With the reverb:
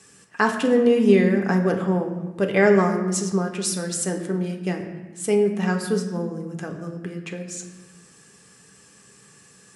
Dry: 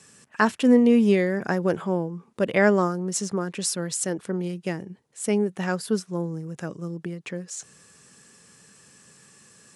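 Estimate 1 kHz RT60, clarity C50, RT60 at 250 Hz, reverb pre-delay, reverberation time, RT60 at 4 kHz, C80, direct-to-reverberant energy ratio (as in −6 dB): 1.1 s, 8.0 dB, 1.8 s, 3 ms, 1.1 s, 0.80 s, 9.5 dB, 3.0 dB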